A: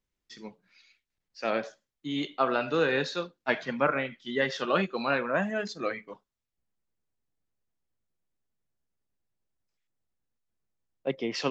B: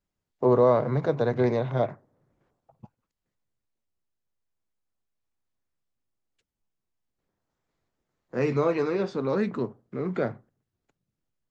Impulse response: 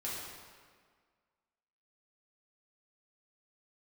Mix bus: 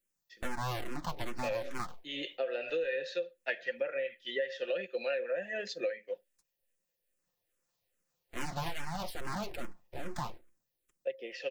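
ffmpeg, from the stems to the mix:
-filter_complex "[0:a]dynaudnorm=framelen=230:gausssize=11:maxgain=11.5dB,asplit=3[link_01][link_02][link_03];[link_01]bandpass=frequency=530:width_type=q:width=8,volume=0dB[link_04];[link_02]bandpass=frequency=1840:width_type=q:width=8,volume=-6dB[link_05];[link_03]bandpass=frequency=2480:width_type=q:width=8,volume=-9dB[link_06];[link_04][link_05][link_06]amix=inputs=3:normalize=0,acrossover=split=520[link_07][link_08];[link_07]aeval=exprs='val(0)*(1-0.5/2+0.5/2*cos(2*PI*5*n/s))':channel_layout=same[link_09];[link_08]aeval=exprs='val(0)*(1-0.5/2-0.5/2*cos(2*PI*5*n/s))':channel_layout=same[link_10];[link_09][link_10]amix=inputs=2:normalize=0,volume=1dB[link_11];[1:a]aeval=exprs='abs(val(0))':channel_layout=same,asplit=2[link_12][link_13];[link_13]afreqshift=-2.4[link_14];[link_12][link_14]amix=inputs=2:normalize=1,volume=-4.5dB[link_15];[link_11][link_15]amix=inputs=2:normalize=0,aecho=1:1:5.7:0.37,crystalizer=i=4:c=0,acompressor=threshold=-31dB:ratio=8"

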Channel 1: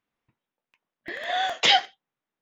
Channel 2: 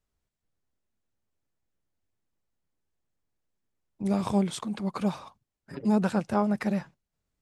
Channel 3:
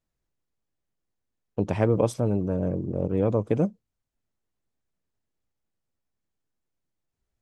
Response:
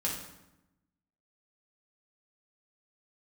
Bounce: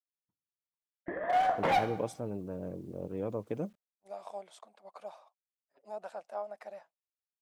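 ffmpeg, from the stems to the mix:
-filter_complex "[0:a]lowpass=frequency=1300:width=0.5412,lowpass=frequency=1300:width=1.3066,volume=25dB,asoftclip=hard,volume=-25dB,volume=-2dB,asplit=2[link_01][link_02];[link_02]volume=-5.5dB[link_03];[1:a]highpass=frequency=650:width_type=q:width=4.9,volume=-19dB[link_04];[2:a]lowshelf=frequency=120:gain=-11.5,acrusher=bits=9:mix=0:aa=0.000001,volume=-10.5dB[link_05];[3:a]atrim=start_sample=2205[link_06];[link_03][link_06]afir=irnorm=-1:irlink=0[link_07];[link_01][link_04][link_05][link_07]amix=inputs=4:normalize=0,agate=range=-33dB:threshold=-53dB:ratio=3:detection=peak"

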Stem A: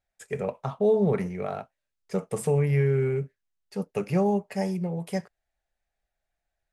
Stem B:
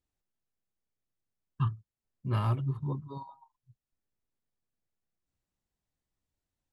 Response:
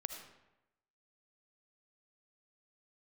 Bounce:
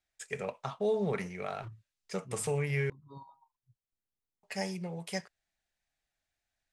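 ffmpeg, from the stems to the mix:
-filter_complex "[0:a]lowpass=8200,tiltshelf=frequency=1200:gain=-7.5,volume=-2.5dB,asplit=3[link_01][link_02][link_03];[link_01]atrim=end=2.9,asetpts=PTS-STARTPTS,afade=type=out:start_time=2.896:duration=0.004:curve=hsin[link_04];[link_02]atrim=start=2.9:end=4.43,asetpts=PTS-STARTPTS,volume=0[link_05];[link_03]atrim=start=4.43,asetpts=PTS-STARTPTS,afade=type=in:duration=0.004:curve=hsin[link_06];[link_04][link_05][link_06]concat=n=3:v=0:a=1,asplit=2[link_07][link_08];[1:a]aeval=exprs='0.0531*(abs(mod(val(0)/0.0531+3,4)-2)-1)':channel_layout=same,volume=-7dB[link_09];[link_08]apad=whole_len=296680[link_10];[link_09][link_10]sidechaincompress=threshold=-47dB:ratio=8:attack=36:release=203[link_11];[link_07][link_11]amix=inputs=2:normalize=0"

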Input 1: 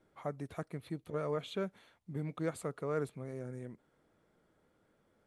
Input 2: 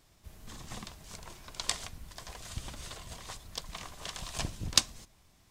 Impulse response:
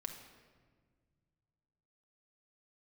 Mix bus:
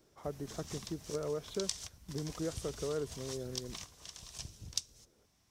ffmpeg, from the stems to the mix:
-filter_complex "[0:a]equalizer=frequency=400:width_type=o:width=0.67:gain=6,equalizer=frequency=1000:width_type=o:width=0.67:gain=-3,equalizer=frequency=2500:width_type=o:width=0.67:gain=-11,volume=-1dB,asplit=2[link_01][link_02];[1:a]highpass=49,equalizer=frequency=5700:width_type=o:width=0.3:gain=7.5,acrossover=split=150|3000[link_03][link_04][link_05];[link_04]acompressor=threshold=-57dB:ratio=2[link_06];[link_03][link_06][link_05]amix=inputs=3:normalize=0,volume=-0.5dB[link_07];[link_02]apad=whole_len=242559[link_08];[link_07][link_08]sidechaingate=range=-8dB:threshold=-59dB:ratio=16:detection=peak[link_09];[link_01][link_09]amix=inputs=2:normalize=0,acompressor=threshold=-35dB:ratio=2"

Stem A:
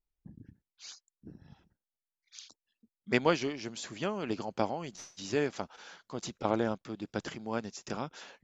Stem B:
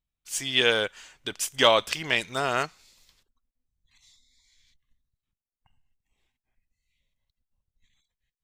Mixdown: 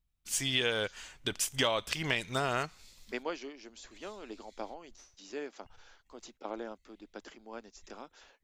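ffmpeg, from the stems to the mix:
ffmpeg -i stem1.wav -i stem2.wav -filter_complex "[0:a]highpass=frequency=250:width=0.5412,highpass=frequency=250:width=1.3066,volume=-9.5dB[link_01];[1:a]lowshelf=frequency=150:gain=9,volume=0dB[link_02];[link_01][link_02]amix=inputs=2:normalize=0,acompressor=threshold=-28dB:ratio=4" out.wav

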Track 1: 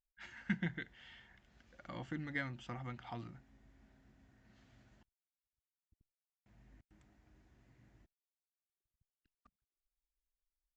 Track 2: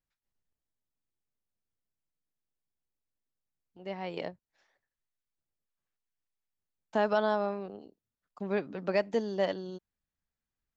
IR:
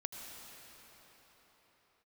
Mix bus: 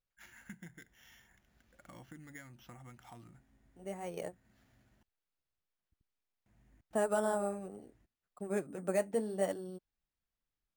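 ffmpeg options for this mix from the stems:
-filter_complex "[0:a]acompressor=threshold=-48dB:ratio=2.5,volume=-3.5dB[link_01];[1:a]flanger=delay=1.6:depth=9.7:regen=-52:speed=0.72:shape=sinusoidal,lowpass=frequency=1700:poles=1,bandreject=frequency=990:width=7.7,volume=0.5dB[link_02];[link_01][link_02]amix=inputs=2:normalize=0,acrusher=samples=5:mix=1:aa=0.000001"

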